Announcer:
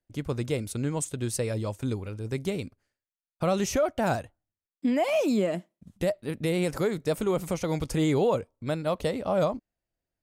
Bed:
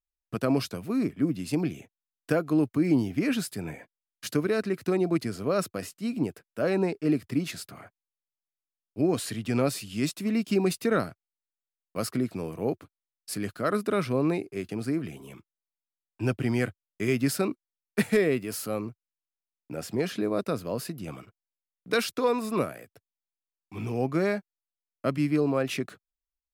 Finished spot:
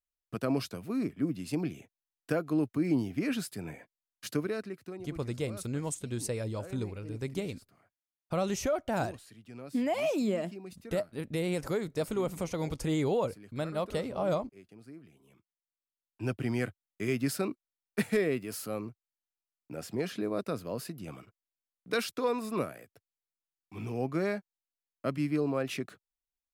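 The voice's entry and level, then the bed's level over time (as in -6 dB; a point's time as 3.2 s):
4.90 s, -5.0 dB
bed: 4.39 s -5 dB
5.11 s -20.5 dB
15.09 s -20.5 dB
16.36 s -5 dB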